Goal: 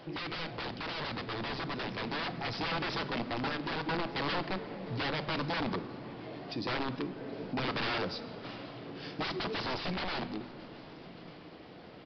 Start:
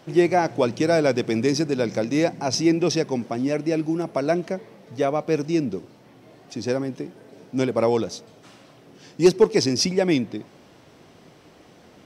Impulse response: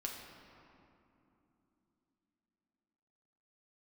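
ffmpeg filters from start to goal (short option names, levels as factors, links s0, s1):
-filter_complex "[0:a]bandreject=f=50:t=h:w=6,bandreject=f=100:t=h:w=6,bandreject=f=150:t=h:w=6,bandreject=f=200:t=h:w=6,bandreject=f=250:t=h:w=6,aeval=exprs='(mod(11.2*val(0)+1,2)-1)/11.2':c=same,alimiter=level_in=2:limit=0.0631:level=0:latency=1:release=249,volume=0.501,asettb=1/sr,asplit=3[s0][s1][s2];[s0]atrim=end=3.484[s3];[s1]atrim=start=3.48:end=3.89,asetpts=PTS-STARTPTS,afade=t=in:d=0.004:c=qsin,afade=t=out:st=0.406:d=0.004:c=qsin,acompressor=threshold=0.0126:ratio=3[s4];[s2]atrim=start=3.886[s5];[s3][s4]acrossfade=d=0.004:c1=hsin:c2=qsin[s6];[s6][s5]acrossfade=d=0.004:c1=qsin:c2=hsin,asoftclip=type=tanh:threshold=0.0224,dynaudnorm=f=220:g=21:m=1.68,aecho=1:1:1192:0.0708,asplit=2[s7][s8];[1:a]atrim=start_sample=2205[s9];[s8][s9]afir=irnorm=-1:irlink=0,volume=0.596[s10];[s7][s10]amix=inputs=2:normalize=0,aresample=11025,aresample=44100,volume=0.75"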